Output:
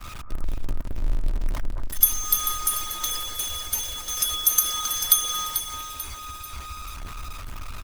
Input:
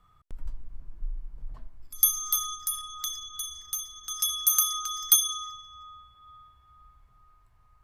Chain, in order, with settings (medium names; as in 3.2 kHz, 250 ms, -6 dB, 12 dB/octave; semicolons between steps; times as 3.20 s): jump at every zero crossing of -27.5 dBFS; expander -28 dBFS; bass shelf 61 Hz +9.5 dB; comb 3.2 ms, depth 43%; in parallel at -2 dB: compression, threshold -26 dBFS, peak gain reduction 13.5 dB; on the sum: echo whose repeats swap between lows and highs 220 ms, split 1.6 kHz, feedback 64%, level -5.5 dB; harmonic-percussive split harmonic -11 dB; trim +3.5 dB